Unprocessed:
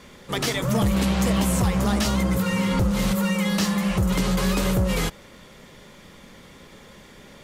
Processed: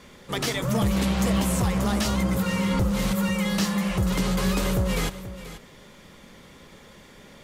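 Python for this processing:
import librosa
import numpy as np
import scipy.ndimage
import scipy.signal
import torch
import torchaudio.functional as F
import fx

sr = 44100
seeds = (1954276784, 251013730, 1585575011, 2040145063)

y = x + 10.0 ** (-14.0 / 20.0) * np.pad(x, (int(484 * sr / 1000.0), 0))[:len(x)]
y = F.gain(torch.from_numpy(y), -2.0).numpy()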